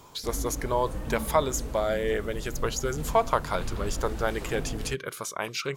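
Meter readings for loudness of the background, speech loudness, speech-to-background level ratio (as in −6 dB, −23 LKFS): −37.5 LKFS, −29.5 LKFS, 8.0 dB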